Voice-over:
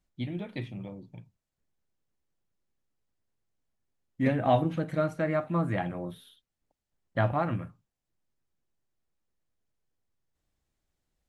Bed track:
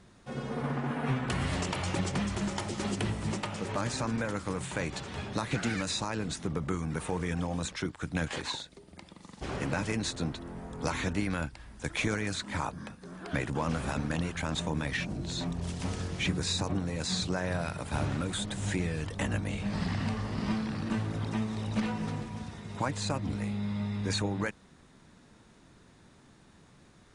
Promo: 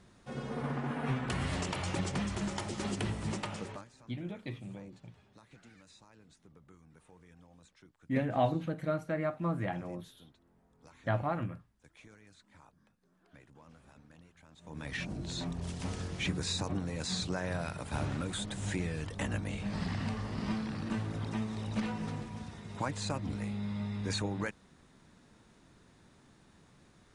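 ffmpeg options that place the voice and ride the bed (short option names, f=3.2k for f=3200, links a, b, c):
-filter_complex "[0:a]adelay=3900,volume=-5dB[a];[1:a]volume=20dB,afade=t=out:st=3.54:d=0.32:silence=0.0668344,afade=t=in:st=14.61:d=0.45:silence=0.0707946[b];[a][b]amix=inputs=2:normalize=0"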